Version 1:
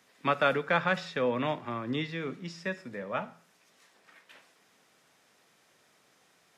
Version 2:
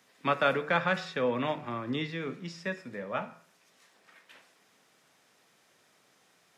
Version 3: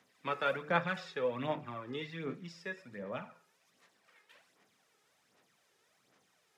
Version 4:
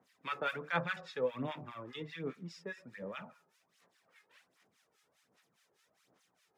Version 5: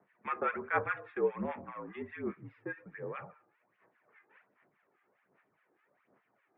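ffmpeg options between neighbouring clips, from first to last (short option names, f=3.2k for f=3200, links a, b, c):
-af "highpass=58,bandreject=f=74.58:t=h:w=4,bandreject=f=149.16:t=h:w=4,bandreject=f=223.74:t=h:w=4,bandreject=f=298.32:t=h:w=4,bandreject=f=372.9:t=h:w=4,bandreject=f=447.48:t=h:w=4,bandreject=f=522.06:t=h:w=4,bandreject=f=596.64:t=h:w=4,bandreject=f=671.22:t=h:w=4,bandreject=f=745.8:t=h:w=4,bandreject=f=820.38:t=h:w=4,bandreject=f=894.96:t=h:w=4,bandreject=f=969.54:t=h:w=4,bandreject=f=1.04412k:t=h:w=4,bandreject=f=1.1187k:t=h:w=4,bandreject=f=1.19328k:t=h:w=4,bandreject=f=1.26786k:t=h:w=4,bandreject=f=1.34244k:t=h:w=4,bandreject=f=1.41702k:t=h:w=4,bandreject=f=1.4916k:t=h:w=4,bandreject=f=1.56618k:t=h:w=4,bandreject=f=1.64076k:t=h:w=4,bandreject=f=1.71534k:t=h:w=4,bandreject=f=1.78992k:t=h:w=4,bandreject=f=1.8645k:t=h:w=4,bandreject=f=1.93908k:t=h:w=4,bandreject=f=2.01366k:t=h:w=4,bandreject=f=2.08824k:t=h:w=4,bandreject=f=2.16282k:t=h:w=4,bandreject=f=2.2374k:t=h:w=4,bandreject=f=2.31198k:t=h:w=4,bandreject=f=2.38656k:t=h:w=4,bandreject=f=2.46114k:t=h:w=4,bandreject=f=2.53572k:t=h:w=4,bandreject=f=2.6103k:t=h:w=4,bandreject=f=2.68488k:t=h:w=4"
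-af "aphaser=in_gain=1:out_gain=1:delay=2.4:decay=0.54:speed=1.3:type=sinusoidal,volume=-8.5dB"
-filter_complex "[0:a]acrossover=split=1100[a][b];[a]aeval=exprs='val(0)*(1-1/2+1/2*cos(2*PI*4.9*n/s))':c=same[c];[b]aeval=exprs='val(0)*(1-1/2-1/2*cos(2*PI*4.9*n/s))':c=same[d];[c][d]amix=inputs=2:normalize=0,volume=2.5dB"
-af "highpass=f=220:t=q:w=0.5412,highpass=f=220:t=q:w=1.307,lowpass=f=2.3k:t=q:w=0.5176,lowpass=f=2.3k:t=q:w=0.7071,lowpass=f=2.3k:t=q:w=1.932,afreqshift=-59,volume=3.5dB"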